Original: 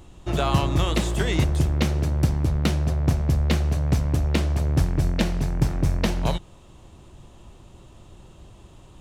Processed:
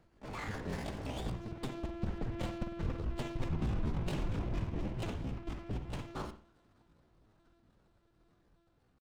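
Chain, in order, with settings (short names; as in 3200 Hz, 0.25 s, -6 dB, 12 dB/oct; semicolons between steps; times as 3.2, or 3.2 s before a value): Doppler pass-by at 3.26, 30 m/s, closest 3.6 m; dynamic EQ 300 Hz, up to -6 dB, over -53 dBFS, Q 3.5; reverse; compressor 6:1, threshold -34 dBFS, peak gain reduction 16 dB; reverse; monotone LPC vocoder at 8 kHz 220 Hz; pitch shift +7.5 st; bell 2800 Hz +3.5 dB 0.83 oct; reverb, pre-delay 50 ms, DRR 8 dB; limiter -35 dBFS, peak gain reduction 11 dB; running maximum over 5 samples; gain +9 dB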